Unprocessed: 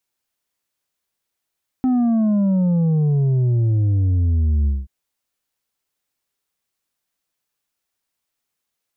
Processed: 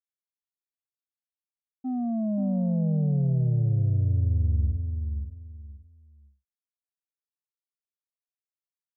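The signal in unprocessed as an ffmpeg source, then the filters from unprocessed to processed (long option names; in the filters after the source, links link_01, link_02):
-f lavfi -i "aevalsrc='0.178*clip((3.03-t)/0.2,0,1)*tanh(1.78*sin(2*PI*260*3.03/log(65/260)*(exp(log(65/260)*t/3.03)-1)))/tanh(1.78)':duration=3.03:sample_rate=44100"
-filter_complex "[0:a]agate=range=-33dB:threshold=-12dB:ratio=3:detection=peak,firequalizer=gain_entry='entry(140,0);entry(310,-7);entry(630,3);entry(1000,-15)':delay=0.05:min_phase=1,asplit=2[link_01][link_02];[link_02]adelay=528,lowpass=frequency=1000:poles=1,volume=-5.5dB,asplit=2[link_03][link_04];[link_04]adelay=528,lowpass=frequency=1000:poles=1,volume=0.24,asplit=2[link_05][link_06];[link_06]adelay=528,lowpass=frequency=1000:poles=1,volume=0.24[link_07];[link_03][link_05][link_07]amix=inputs=3:normalize=0[link_08];[link_01][link_08]amix=inputs=2:normalize=0"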